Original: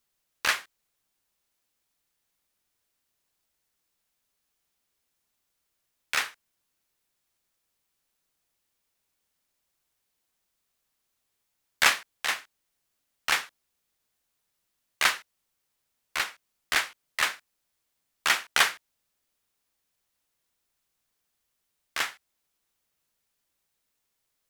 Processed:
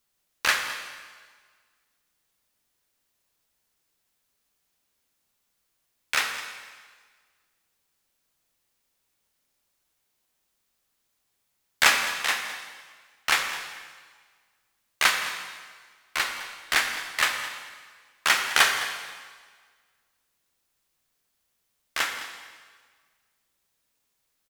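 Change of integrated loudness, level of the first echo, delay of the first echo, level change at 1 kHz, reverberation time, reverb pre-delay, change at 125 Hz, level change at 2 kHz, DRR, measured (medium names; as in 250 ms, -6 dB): +2.5 dB, -16.0 dB, 210 ms, +3.5 dB, 1.6 s, 8 ms, no reading, +3.5 dB, 4.0 dB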